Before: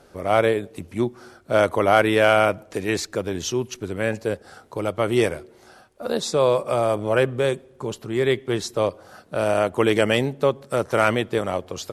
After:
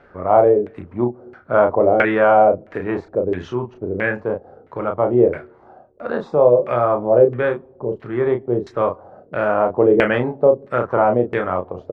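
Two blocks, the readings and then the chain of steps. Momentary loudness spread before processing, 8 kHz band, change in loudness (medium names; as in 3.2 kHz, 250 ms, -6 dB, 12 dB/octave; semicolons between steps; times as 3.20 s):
11 LU, under -25 dB, +4.0 dB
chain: doubling 33 ms -5 dB; LFO low-pass saw down 1.5 Hz 410–2100 Hz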